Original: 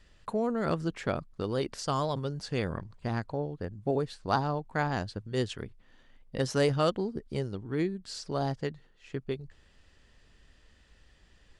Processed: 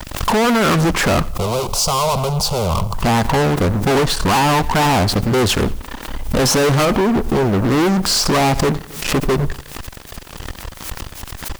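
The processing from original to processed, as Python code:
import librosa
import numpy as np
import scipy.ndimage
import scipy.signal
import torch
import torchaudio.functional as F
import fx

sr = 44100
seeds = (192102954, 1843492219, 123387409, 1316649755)

y = fx.graphic_eq(x, sr, hz=(125, 500, 1000, 2000, 4000, 8000), db=(-8, -5, 6, -10, -5, -4))
y = fx.fuzz(y, sr, gain_db=52.0, gate_db=-57.0)
y = fx.high_shelf(y, sr, hz=3400.0, db=-9.5, at=(6.85, 7.64))
y = fx.quant_dither(y, sr, seeds[0], bits=8, dither='triangular')
y = fx.fixed_phaser(y, sr, hz=720.0, stages=4, at=(1.3, 2.94))
y = fx.echo_feedback(y, sr, ms=89, feedback_pct=39, wet_db=-21.0)
y = fx.pre_swell(y, sr, db_per_s=81.0)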